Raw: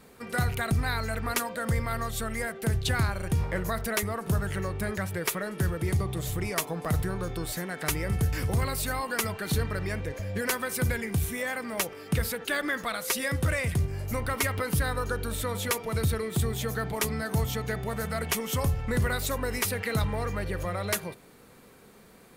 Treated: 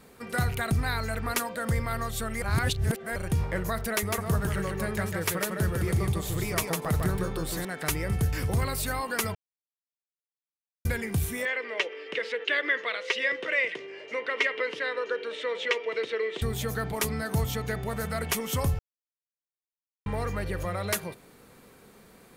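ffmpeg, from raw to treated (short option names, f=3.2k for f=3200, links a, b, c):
-filter_complex "[0:a]asettb=1/sr,asplit=3[a][b][c];[a]atrim=end=3.974[d];[b]atrim=start=3.97:end=7.65,asetpts=PTS-STARTPTS,afade=t=in:d=0.004:c=qsin,afade=t=out:st=3.676:d=0.004:c=qsin,aecho=1:1:152:0.668,atrim=end_sample=162288[e];[c]atrim=start=7.646[f];[d][e]acrossfade=d=0.004:c1=hsin:c2=qsin[g];[g][f]acrossfade=d=0.004:c1=qsin:c2=hsin,asettb=1/sr,asplit=3[h][i][j];[h]atrim=end=11.454[k];[i]atrim=start=11.45:end=16.42,asetpts=PTS-STARTPTS,afade=t=in:d=0.004:c=qsin,afade=t=out:st=4.966:d=0.004:c=qsin,highpass=f=360:w=0.5412,highpass=f=360:w=1.3066,equalizer=f=460:t=q:w=4:g=6,equalizer=f=770:t=q:w=4:g=-9,equalizer=f=1.3k:t=q:w=4:g=-5,equalizer=f=2k:t=q:w=4:g=8,equalizer=f=2.9k:t=q:w=4:g=8,equalizer=f=4.6k:t=q:w=4:g=-5,lowpass=f=4.8k:w=0.5412,lowpass=f=4.8k:w=1.3066[l];[j]atrim=start=16.416[m];[k][l]acrossfade=d=0.004:c1=hsin:c2=qsin[n];[n][m]acrossfade=d=0.004:c1=qsin:c2=hsin,asplit=7[o][p][q][r][s][t][u];[o]atrim=end=2.422[v];[p]atrim=start=2.418:end=3.162,asetpts=PTS-STARTPTS,areverse[w];[q]atrim=start=3.158:end=9.35,asetpts=PTS-STARTPTS,afade=t=out:st=6.188:d=0.004:c=hsin[x];[r]atrim=start=9.35:end=10.85,asetpts=PTS-STARTPTS,volume=0[y];[s]atrim=start=10.85:end=18.79,asetpts=PTS-STARTPTS,afade=t=in:d=0.004:c=hsin,afade=t=out:st=7.936:d=0.004:c=hsin[z];[t]atrim=start=18.79:end=20.06,asetpts=PTS-STARTPTS,volume=0[aa];[u]atrim=start=20.06,asetpts=PTS-STARTPTS,afade=t=in:d=0.004:c=hsin[ab];[v][w]acrossfade=d=0.004:c1=hsin:c2=hsin[ac];[x][y][z][aa][ab]concat=n=5:v=0:a=1[ad];[ac][ad]acrossfade=d=0.004:c1=hsin:c2=hsin"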